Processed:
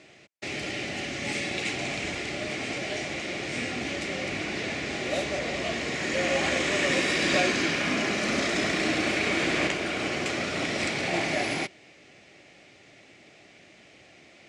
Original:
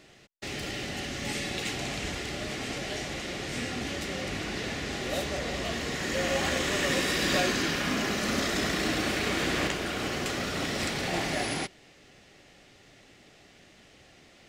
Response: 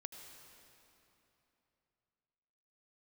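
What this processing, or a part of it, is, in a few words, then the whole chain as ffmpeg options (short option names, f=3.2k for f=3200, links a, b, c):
car door speaker: -af "highpass=89,equalizer=f=330:t=q:w=4:g=4,equalizer=f=630:t=q:w=4:g=5,equalizer=f=2.3k:t=q:w=4:g=8,lowpass=f=9.1k:w=0.5412,lowpass=f=9.1k:w=1.3066"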